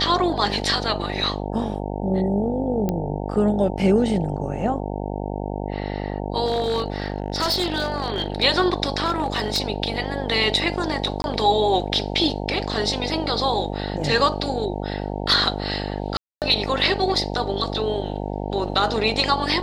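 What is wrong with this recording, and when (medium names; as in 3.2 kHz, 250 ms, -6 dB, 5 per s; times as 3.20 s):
buzz 50 Hz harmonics 18 -28 dBFS
2.89 s: pop -11 dBFS
6.45–8.43 s: clipped -17.5 dBFS
9.05–9.60 s: clipped -16.5 dBFS
11.22–11.24 s: dropout 21 ms
16.17–16.42 s: dropout 248 ms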